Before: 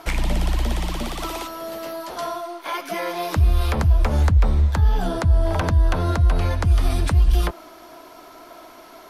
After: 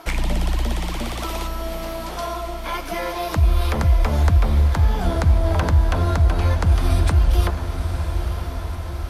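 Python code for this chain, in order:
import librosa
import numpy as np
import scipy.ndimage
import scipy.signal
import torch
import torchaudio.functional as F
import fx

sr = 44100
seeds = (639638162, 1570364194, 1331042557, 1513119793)

y = x + fx.echo_diffused(x, sr, ms=951, feedback_pct=63, wet_db=-8, dry=0)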